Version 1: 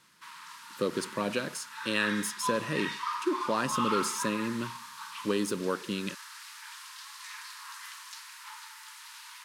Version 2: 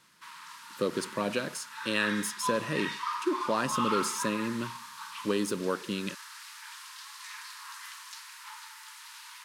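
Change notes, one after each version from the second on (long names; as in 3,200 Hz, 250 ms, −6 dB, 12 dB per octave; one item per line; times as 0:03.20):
master: add parametric band 650 Hz +2 dB 0.44 octaves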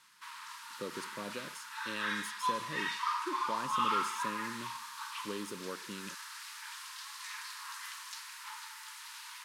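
speech −11.5 dB
master: add parametric band 650 Hz −2 dB 0.44 octaves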